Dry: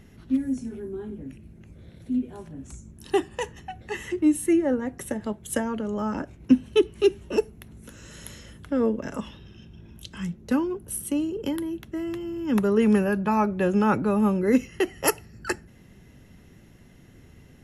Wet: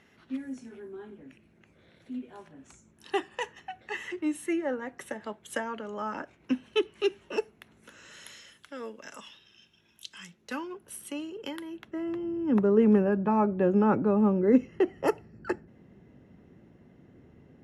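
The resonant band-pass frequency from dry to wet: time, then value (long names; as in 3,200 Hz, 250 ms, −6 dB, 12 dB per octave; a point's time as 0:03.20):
resonant band-pass, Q 0.54
0:07.99 1,700 Hz
0:08.70 4,800 Hz
0:10.17 4,800 Hz
0:10.80 2,000 Hz
0:11.64 2,000 Hz
0:12.28 390 Hz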